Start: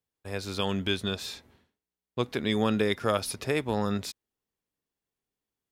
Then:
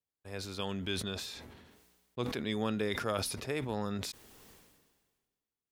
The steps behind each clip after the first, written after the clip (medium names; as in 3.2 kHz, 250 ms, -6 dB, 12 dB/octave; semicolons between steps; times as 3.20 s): decay stretcher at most 39 dB/s; trim -8 dB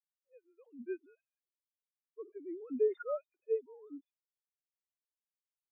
formants replaced by sine waves; spectral contrast expander 2.5:1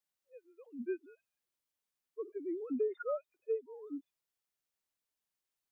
compression 3:1, threshold -39 dBFS, peak gain reduction 10.5 dB; trim +5.5 dB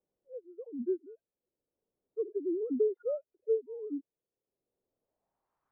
low-pass sweep 460 Hz -> 1.2 kHz, 4.87–5.68 s; three bands compressed up and down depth 40%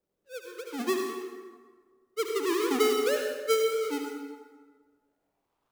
square wave that keeps the level; on a send at -1.5 dB: reverberation RT60 1.6 s, pre-delay 57 ms